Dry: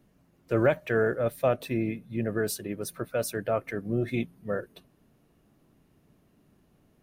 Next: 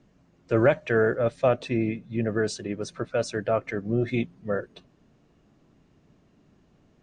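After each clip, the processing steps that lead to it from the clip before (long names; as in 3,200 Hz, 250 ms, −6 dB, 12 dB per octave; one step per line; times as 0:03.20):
Butterworth low-pass 7,600 Hz 48 dB per octave
level +3 dB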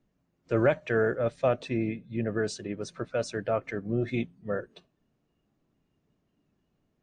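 noise reduction from a noise print of the clip's start 10 dB
level −3.5 dB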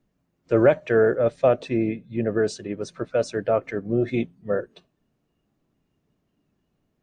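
dynamic equaliser 450 Hz, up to +6 dB, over −36 dBFS, Q 0.72
level +2 dB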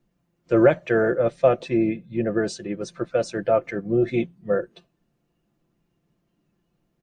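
comb filter 5.8 ms, depth 48%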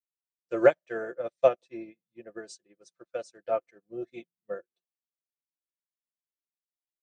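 bass and treble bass −13 dB, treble +12 dB
expander for the loud parts 2.5 to 1, over −39 dBFS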